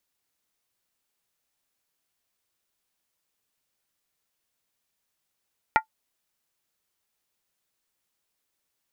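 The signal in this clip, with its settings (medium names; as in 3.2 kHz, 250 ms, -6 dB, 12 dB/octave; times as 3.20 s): skin hit, lowest mode 879 Hz, decay 0.10 s, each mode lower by 3.5 dB, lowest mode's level -12 dB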